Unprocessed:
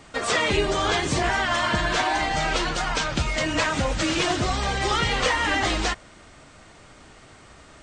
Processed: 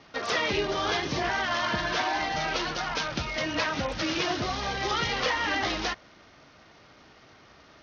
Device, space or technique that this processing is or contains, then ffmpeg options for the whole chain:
Bluetooth headset: -af "highpass=f=130:p=1,aresample=16000,aresample=44100,volume=-4.5dB" -ar 48000 -c:a sbc -b:a 64k

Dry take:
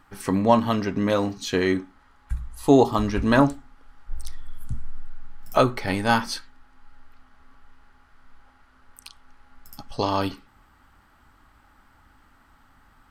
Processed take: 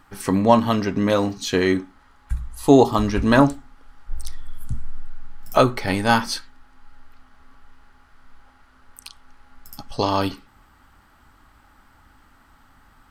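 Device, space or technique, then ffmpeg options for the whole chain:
exciter from parts: -filter_complex "[0:a]asplit=2[a][b];[b]highpass=2.7k,asoftclip=type=tanh:threshold=-27dB,volume=-12.5dB[c];[a][c]amix=inputs=2:normalize=0,volume=3dB"

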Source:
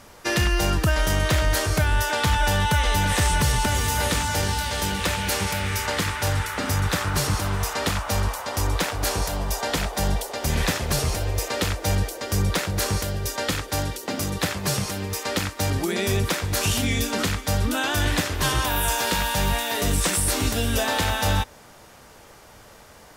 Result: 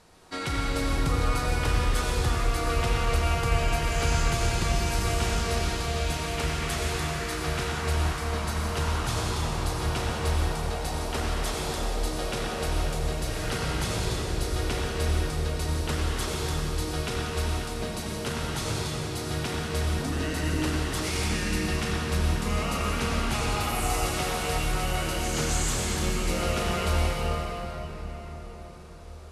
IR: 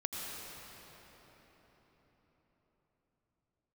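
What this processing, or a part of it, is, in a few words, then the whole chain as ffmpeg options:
slowed and reverbed: -filter_complex "[0:a]asetrate=34839,aresample=44100[a];[1:a]atrim=start_sample=2205[b];[a][b]afir=irnorm=-1:irlink=0,volume=-7.5dB"

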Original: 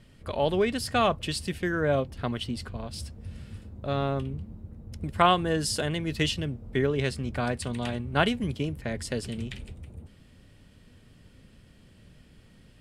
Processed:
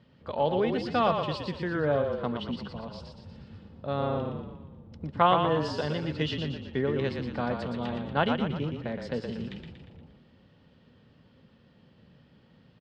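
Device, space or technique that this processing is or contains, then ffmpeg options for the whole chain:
frequency-shifting delay pedal into a guitar cabinet: -filter_complex "[0:a]asplit=8[a][b][c][d][e][f][g][h];[b]adelay=118,afreqshift=-32,volume=-5.5dB[i];[c]adelay=236,afreqshift=-64,volume=-11.2dB[j];[d]adelay=354,afreqshift=-96,volume=-16.9dB[k];[e]adelay=472,afreqshift=-128,volume=-22.5dB[l];[f]adelay=590,afreqshift=-160,volume=-28.2dB[m];[g]adelay=708,afreqshift=-192,volume=-33.9dB[n];[h]adelay=826,afreqshift=-224,volume=-39.6dB[o];[a][i][j][k][l][m][n][o]amix=inputs=8:normalize=0,highpass=94,equalizer=f=160:t=q:w=4:g=4,equalizer=f=240:t=q:w=4:g=4,equalizer=f=510:t=q:w=4:g=6,equalizer=f=870:t=q:w=4:g=7,equalizer=f=1.2k:t=q:w=4:g=3,equalizer=f=2.3k:t=q:w=4:g=-4,lowpass=f=4.6k:w=0.5412,lowpass=f=4.6k:w=1.3066,volume=-5dB"

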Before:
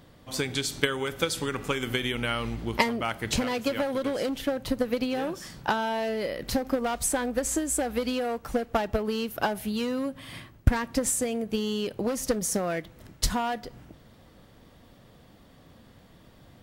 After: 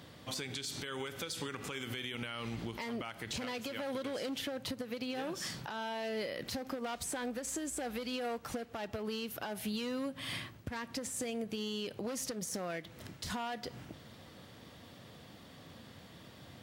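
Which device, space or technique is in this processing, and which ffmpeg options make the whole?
broadcast voice chain: -af "highpass=f=74:w=0.5412,highpass=f=74:w=1.3066,deesser=0.55,acompressor=threshold=-36dB:ratio=3,equalizer=f=3.9k:t=o:w=2.5:g=5.5,alimiter=level_in=5dB:limit=-24dB:level=0:latency=1:release=84,volume=-5dB"

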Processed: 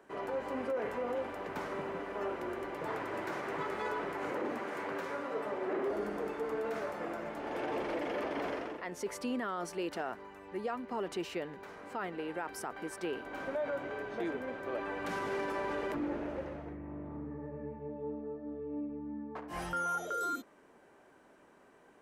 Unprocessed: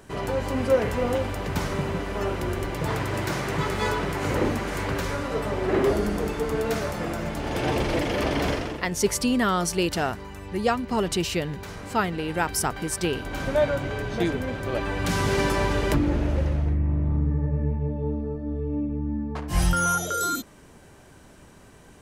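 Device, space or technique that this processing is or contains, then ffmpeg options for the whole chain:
DJ mixer with the lows and highs turned down: -filter_complex "[0:a]asettb=1/sr,asplit=3[a][b][c];[a]atrim=end=4.294[d];[b]atrim=start=4.29:end=5.87,asetpts=PTS-STARTPTS,afade=t=in:d=0.004:c=qsin,afade=t=out:st=1.576:d=0.004:c=qsin,highpass=110[e];[c]atrim=start=5.866[f];[d][e]acrossfade=d=0.004:c1=hsin:c2=qsin[g];[g][f]acrossfade=d=0.004:c1=qsin:c2=hsin,acrossover=split=250 2300:gain=0.0794 1 0.224[h][i][j];[h][i][j]amix=inputs=3:normalize=0,alimiter=limit=-20.5dB:level=0:latency=1:release=31,volume=-7dB"

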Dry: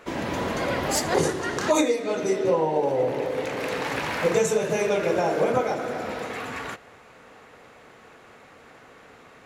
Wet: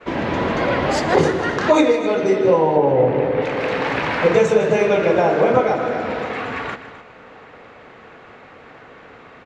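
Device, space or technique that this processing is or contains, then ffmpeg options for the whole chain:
hearing-loss simulation: -filter_complex "[0:a]asettb=1/sr,asplit=3[a][b][c];[a]atrim=end=2.764[d];[b]atrim=start=2.76:end=3.42,asetpts=PTS-STARTPTS,afade=t=in:d=0.004:c=qsin,afade=t=out:st=0.656:d=0.004:c=qsin,bass=f=250:g=6,treble=f=4k:g=-12[e];[c]atrim=start=3.416[f];[d][e]acrossfade=d=0.004:c1=hsin:c2=qsin[g];[g][f]acrossfade=d=0.004:c1=qsin:c2=hsin,lowpass=3.4k,aecho=1:1:156|259:0.2|0.188,agate=range=-33dB:threshold=-51dB:ratio=3:detection=peak,volume=7dB"

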